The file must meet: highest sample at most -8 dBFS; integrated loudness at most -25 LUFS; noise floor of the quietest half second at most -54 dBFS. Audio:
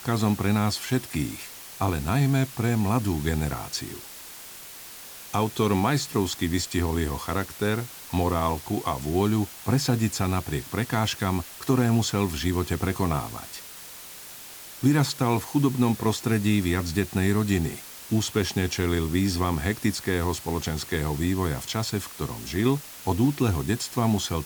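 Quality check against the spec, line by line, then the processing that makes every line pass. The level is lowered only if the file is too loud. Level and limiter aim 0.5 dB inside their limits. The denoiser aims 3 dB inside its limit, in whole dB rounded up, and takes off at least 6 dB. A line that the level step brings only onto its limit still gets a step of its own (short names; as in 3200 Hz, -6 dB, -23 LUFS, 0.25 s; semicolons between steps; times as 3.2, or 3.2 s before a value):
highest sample -10.0 dBFS: OK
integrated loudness -26.0 LUFS: OK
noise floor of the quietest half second -42 dBFS: fail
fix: denoiser 15 dB, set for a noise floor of -42 dBFS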